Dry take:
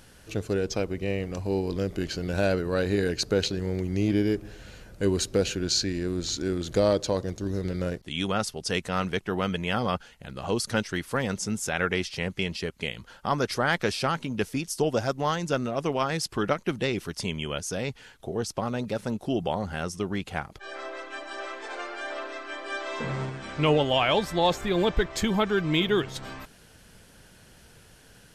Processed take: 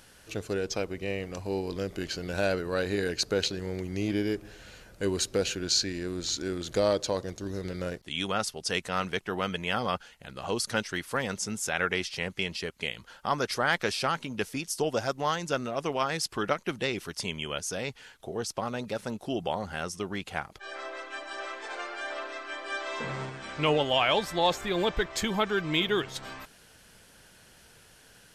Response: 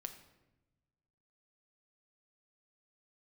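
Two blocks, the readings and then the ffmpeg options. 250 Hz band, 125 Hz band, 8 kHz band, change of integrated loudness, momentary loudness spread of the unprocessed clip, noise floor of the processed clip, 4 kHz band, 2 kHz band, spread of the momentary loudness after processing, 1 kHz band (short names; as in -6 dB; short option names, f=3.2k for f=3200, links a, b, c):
-5.5 dB, -6.5 dB, 0.0 dB, -2.5 dB, 11 LU, -56 dBFS, 0.0 dB, -0.5 dB, 11 LU, -1.0 dB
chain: -af "lowshelf=f=400:g=-7.5"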